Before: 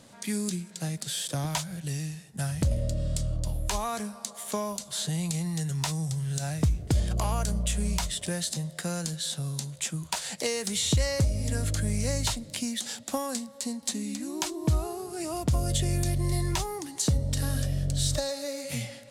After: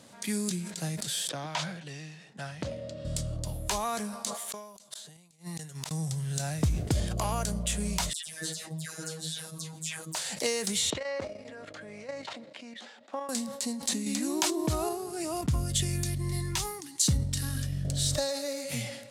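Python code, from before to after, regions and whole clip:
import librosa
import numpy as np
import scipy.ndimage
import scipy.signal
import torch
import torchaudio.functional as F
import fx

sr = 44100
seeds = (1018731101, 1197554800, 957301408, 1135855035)

y = fx.chain(x, sr, fx.bandpass_edges(low_hz=120.0, high_hz=3900.0),
    fx.low_shelf(hz=260.0, db=-10.5), at=(1.29, 3.05))
y = fx.chain(y, sr, fx.low_shelf(hz=180.0, db=-11.0),
    fx.gate_flip(shuts_db=-25.0, range_db=-33), at=(4.34, 5.91))
y = fx.chain(y, sr, fx.dispersion(late='lows', ms=142.0, hz=1800.0),
    fx.robotise(hz=159.0),
    fx.ensemble(), at=(8.13, 10.15))
y = fx.chain(y, sr, fx.bandpass_edges(low_hz=430.0, high_hz=2200.0),
    fx.level_steps(step_db=11), at=(10.9, 13.29))
y = fx.chain(y, sr, fx.low_shelf(hz=120.0, db=-11.0),
    fx.env_flatten(amount_pct=50), at=(14.06, 14.89))
y = fx.chain(y, sr, fx.peak_eq(hz=580.0, db=-12.5, octaves=1.1),
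    fx.band_widen(depth_pct=70), at=(15.41, 17.85))
y = fx.highpass(y, sr, hz=120.0, slope=6)
y = fx.sustainer(y, sr, db_per_s=60.0)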